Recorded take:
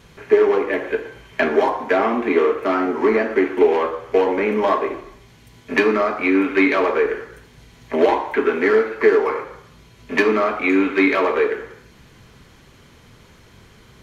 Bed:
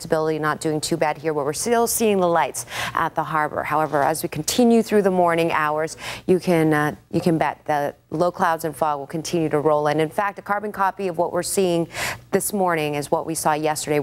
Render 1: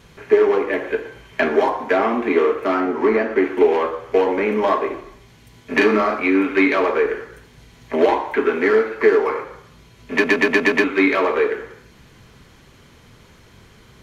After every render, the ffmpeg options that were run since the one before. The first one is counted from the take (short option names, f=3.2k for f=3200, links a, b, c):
-filter_complex "[0:a]asettb=1/sr,asplit=3[a][b][c];[a]atrim=end=2.804[d];[b]atrim=start=2.8:end=3.44,asetpts=PTS-STARTPTS,afade=t=in:d=0.004:c=qsin,afade=t=out:st=0.636:d=0.004:c=qsin,highshelf=f=5k:g=-6[e];[c]atrim=start=3.436[f];[d][e]acrossfade=d=0.004:c1=hsin:c2=qsin[g];[g][f]acrossfade=d=0.004:c1=qsin:c2=hsin,asettb=1/sr,asplit=3[h][i][j];[h]atrim=end=5.734[k];[i]atrim=start=5.73:end=6.2,asetpts=PTS-STARTPTS,afade=t=in:d=0.004:c=qsin,afade=t=out:st=0.466:d=0.004:c=qsin,asplit=2[l][m];[m]adelay=38,volume=-2.5dB[n];[l][n]amix=inputs=2:normalize=0,atrim=end_sample=20727[o];[j]atrim=start=6.196[p];[k][o]acrossfade=d=0.004:c1=hsin:c2=qsin[q];[q][p]acrossfade=d=0.004:c1=qsin:c2=hsin,asplit=7[r][s][t][u][v][w][x];[r]atrim=end=10.242[y];[s]atrim=start=10.118:end=10.242[z];[t]atrim=start=10.118:end=10.242[aa];[u]atrim=start=10.118:end=10.242[ab];[v]atrim=start=10.118:end=10.242[ac];[w]atrim=start=10.118:end=10.242[ad];[x]atrim=start=10.838[ae];[y][z]acrossfade=d=0.004:c1=hsin:c2=hsin[af];[af][aa]acrossfade=d=0.004:c1=hsin:c2=hsin[ag];[ag][ab]acrossfade=d=0.004:c1=hsin:c2=hsin[ah];[ah][ac]acrossfade=d=0.004:c1=hsin:c2=hsin[ai];[ai][ad]acrossfade=d=0.004:c1=hsin:c2=hsin[aj];[aj][ae]acrossfade=d=0.004:c1=hsin:c2=hsin"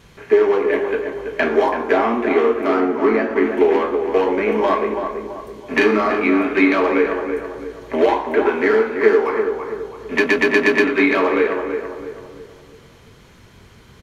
-filter_complex "[0:a]asplit=2[a][b];[b]adelay=22,volume=-11.5dB[c];[a][c]amix=inputs=2:normalize=0,asplit=2[d][e];[e]adelay=331,lowpass=f=1.6k:p=1,volume=-6dB,asplit=2[f][g];[g]adelay=331,lowpass=f=1.6k:p=1,volume=0.44,asplit=2[h][i];[i]adelay=331,lowpass=f=1.6k:p=1,volume=0.44,asplit=2[j][k];[k]adelay=331,lowpass=f=1.6k:p=1,volume=0.44,asplit=2[l][m];[m]adelay=331,lowpass=f=1.6k:p=1,volume=0.44[n];[d][f][h][j][l][n]amix=inputs=6:normalize=0"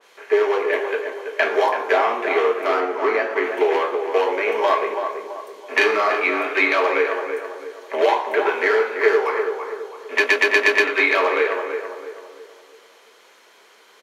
-af "highpass=f=440:w=0.5412,highpass=f=440:w=1.3066,adynamicequalizer=threshold=0.0355:dfrequency=2200:dqfactor=0.7:tfrequency=2200:tqfactor=0.7:attack=5:release=100:ratio=0.375:range=2:mode=boostabove:tftype=highshelf"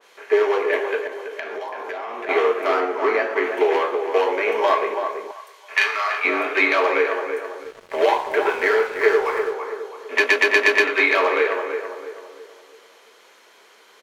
-filter_complex "[0:a]asettb=1/sr,asplit=3[a][b][c];[a]atrim=end=1.074[d];[b]atrim=start=1.07:end=2.29,asetpts=PTS-STARTPTS,afade=t=in:d=0.004:c=qsin,afade=t=out:st=1.216:d=0.004:c=qsin,acompressor=threshold=-27dB:ratio=8:attack=3.2:release=140:knee=1:detection=peak[e];[c]atrim=start=2.286[f];[d][e]acrossfade=d=0.004:c1=hsin:c2=qsin[g];[g][f]acrossfade=d=0.004:c1=qsin:c2=hsin,asettb=1/sr,asplit=3[h][i][j];[h]atrim=end=5.314[k];[i]atrim=start=5.31:end=6.25,asetpts=PTS-STARTPTS,afade=t=in:d=0.004:c=qsin,afade=t=out:st=0.936:d=0.004:c=qsin,highpass=1.1k[l];[j]atrim=start=6.246[m];[k][l]acrossfade=d=0.004:c1=hsin:c2=qsin[n];[n][m]acrossfade=d=0.004:c1=qsin:c2=hsin,asettb=1/sr,asplit=3[o][p][q];[o]atrim=end=7.634[r];[p]atrim=start=7.63:end=9.54,asetpts=PTS-STARTPTS,afade=t=in:d=0.004:c=qsin,afade=t=out:st=1.906:d=0.004:c=qsin,aeval=exprs='sgn(val(0))*max(abs(val(0))-0.00944,0)':c=same[s];[q]atrim=start=9.536[t];[r][s]acrossfade=d=0.004:c1=hsin:c2=qsin[u];[u][t]acrossfade=d=0.004:c1=qsin:c2=hsin"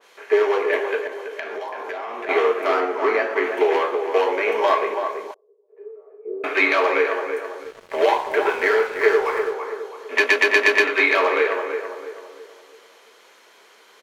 -filter_complex "[0:a]asettb=1/sr,asplit=3[a][b][c];[a]atrim=end=5.344[d];[b]atrim=start=5.34:end=6.44,asetpts=PTS-STARTPTS,afade=t=in:d=0.004:c=qsin,afade=t=out:st=1.096:d=0.004:c=qsin,asuperpass=centerf=420:order=4:qfactor=4.5[e];[c]atrim=start=6.436[f];[d][e]acrossfade=d=0.004:c1=hsin:c2=qsin[g];[g][f]acrossfade=d=0.004:c1=qsin:c2=hsin"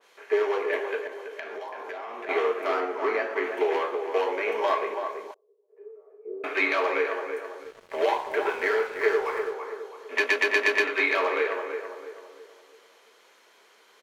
-af "volume=-6.5dB"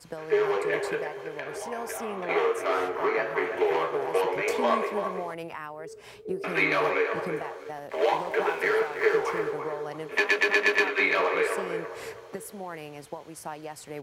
-filter_complex "[1:a]volume=-18dB[a];[0:a][a]amix=inputs=2:normalize=0"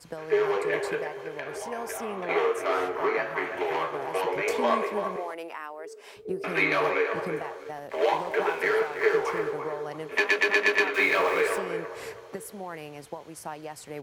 -filter_complex "[0:a]asettb=1/sr,asplit=3[a][b][c];[a]atrim=end=3.174[d];[b]atrim=start=3.17:end=4.27,asetpts=PTS-STARTPTS,afade=t=in:d=0.004:c=qsin,afade=t=out:st=1.096:d=0.004:c=qsin,equalizer=f=440:t=o:w=0.48:g=-7[e];[c]atrim=start=4.266[f];[d][e]acrossfade=d=0.004:c1=hsin:c2=qsin[g];[g][f]acrossfade=d=0.004:c1=qsin:c2=hsin,asettb=1/sr,asplit=3[h][i][j];[h]atrim=end=5.164[k];[i]atrim=start=5.16:end=6.17,asetpts=PTS-STARTPTS,afade=t=in:d=0.004:c=qsin,afade=t=out:st=1.006:d=0.004:c=qsin,highpass=f=290:w=0.5412,highpass=f=290:w=1.3066[l];[j]atrim=start=6.166[m];[k][l]acrossfade=d=0.004:c1=hsin:c2=qsin[n];[n][m]acrossfade=d=0.004:c1=qsin:c2=hsin,asettb=1/sr,asplit=3[o][p][q];[o]atrim=end=10.944[r];[p]atrim=start=10.94:end=11.58,asetpts=PTS-STARTPTS,afade=t=in:d=0.004:c=qsin,afade=t=out:st=0.636:d=0.004:c=qsin,aeval=exprs='val(0)+0.5*0.015*sgn(val(0))':c=same[s];[q]atrim=start=11.576[t];[r][s]acrossfade=d=0.004:c1=hsin:c2=qsin[u];[u][t]acrossfade=d=0.004:c1=qsin:c2=hsin"